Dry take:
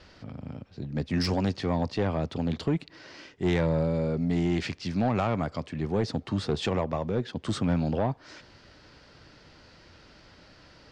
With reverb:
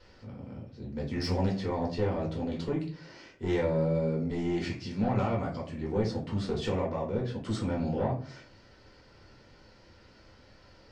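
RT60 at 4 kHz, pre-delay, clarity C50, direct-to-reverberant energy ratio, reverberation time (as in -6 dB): 0.25 s, 3 ms, 8.5 dB, -3.5 dB, 0.45 s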